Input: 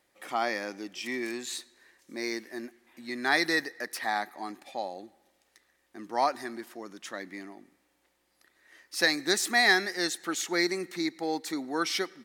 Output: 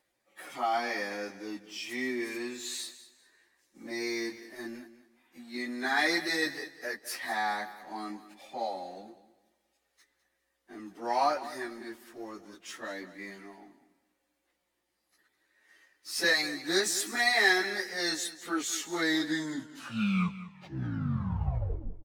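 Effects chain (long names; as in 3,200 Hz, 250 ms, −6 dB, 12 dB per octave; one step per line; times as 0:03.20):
turntable brake at the end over 1.77 s
leveller curve on the samples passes 1
time stretch by phase vocoder 1.8×
repeating echo 202 ms, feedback 25%, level −15 dB
level −2.5 dB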